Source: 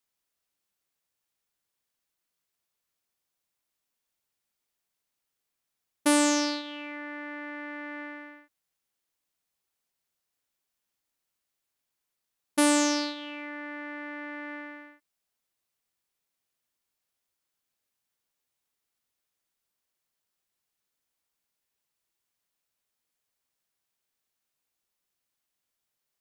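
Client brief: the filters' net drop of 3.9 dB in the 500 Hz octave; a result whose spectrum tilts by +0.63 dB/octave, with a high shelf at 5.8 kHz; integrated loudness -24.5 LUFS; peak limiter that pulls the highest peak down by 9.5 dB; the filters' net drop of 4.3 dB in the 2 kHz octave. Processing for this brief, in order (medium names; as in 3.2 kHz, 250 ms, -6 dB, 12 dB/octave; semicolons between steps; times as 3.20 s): peaking EQ 500 Hz -4.5 dB; peaking EQ 2 kHz -6 dB; treble shelf 5.8 kHz +5 dB; trim +11 dB; peak limiter -8 dBFS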